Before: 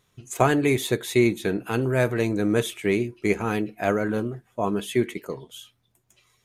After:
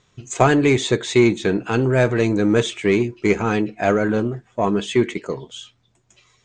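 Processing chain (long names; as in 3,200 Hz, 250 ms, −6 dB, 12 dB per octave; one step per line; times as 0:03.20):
in parallel at −4 dB: soft clipping −20.5 dBFS, distortion −9 dB
on the sum: Butterworth low-pass 8,000 Hz 72 dB per octave
level +2.5 dB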